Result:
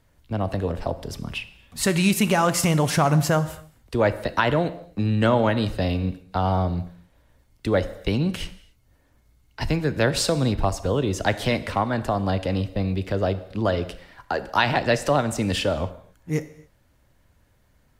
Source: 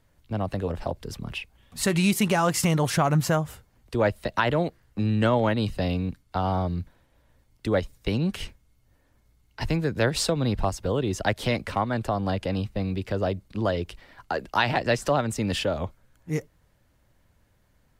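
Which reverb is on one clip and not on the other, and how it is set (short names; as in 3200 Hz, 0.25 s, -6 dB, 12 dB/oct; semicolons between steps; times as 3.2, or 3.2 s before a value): non-linear reverb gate 0.3 s falling, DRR 12 dB; gain +2.5 dB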